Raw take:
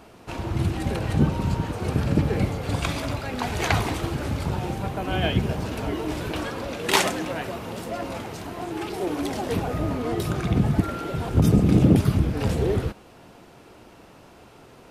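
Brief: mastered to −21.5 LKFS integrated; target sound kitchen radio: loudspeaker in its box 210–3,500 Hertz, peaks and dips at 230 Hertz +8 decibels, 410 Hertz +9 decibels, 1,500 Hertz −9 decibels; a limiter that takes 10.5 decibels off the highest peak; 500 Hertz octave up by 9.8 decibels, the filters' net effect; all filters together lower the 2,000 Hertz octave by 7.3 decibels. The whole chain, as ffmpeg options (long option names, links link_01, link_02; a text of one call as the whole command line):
ffmpeg -i in.wav -af "equalizer=frequency=500:width_type=o:gain=6,equalizer=frequency=2000:width_type=o:gain=-6,alimiter=limit=-14.5dB:level=0:latency=1,highpass=210,equalizer=frequency=230:width_type=q:width=4:gain=8,equalizer=frequency=410:width_type=q:width=4:gain=9,equalizer=frequency=1500:width_type=q:width=4:gain=-9,lowpass=frequency=3500:width=0.5412,lowpass=frequency=3500:width=1.3066,volume=2.5dB" out.wav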